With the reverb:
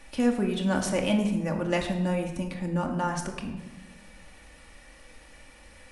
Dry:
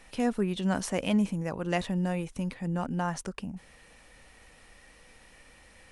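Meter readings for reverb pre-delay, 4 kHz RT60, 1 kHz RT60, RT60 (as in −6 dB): 3 ms, 0.75 s, 1.0 s, 1.1 s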